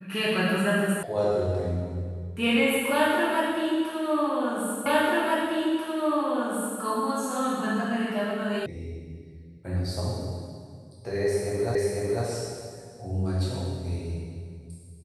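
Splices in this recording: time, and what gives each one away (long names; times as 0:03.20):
0:01.03: cut off before it has died away
0:04.86: the same again, the last 1.94 s
0:08.66: cut off before it has died away
0:11.75: the same again, the last 0.5 s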